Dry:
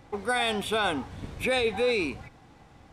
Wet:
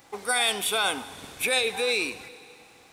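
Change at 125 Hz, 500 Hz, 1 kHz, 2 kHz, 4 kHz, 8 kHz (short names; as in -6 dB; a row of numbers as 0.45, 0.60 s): -11.0, -2.5, -0.5, +3.0, +6.0, +12.5 dB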